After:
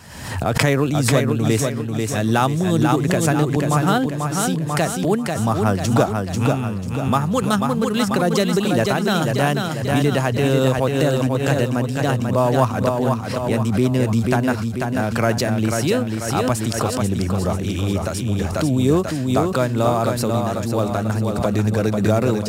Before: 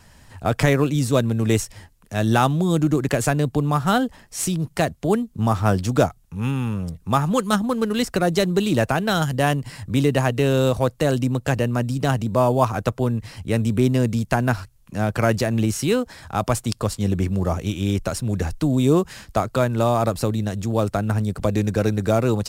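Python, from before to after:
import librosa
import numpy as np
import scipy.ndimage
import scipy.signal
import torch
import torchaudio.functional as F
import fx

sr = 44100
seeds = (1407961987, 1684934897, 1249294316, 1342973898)

p1 = scipy.signal.sosfilt(scipy.signal.butter(2, 82.0, 'highpass', fs=sr, output='sos'), x)
p2 = p1 + fx.echo_feedback(p1, sr, ms=491, feedback_pct=44, wet_db=-4.5, dry=0)
y = fx.pre_swell(p2, sr, db_per_s=57.0)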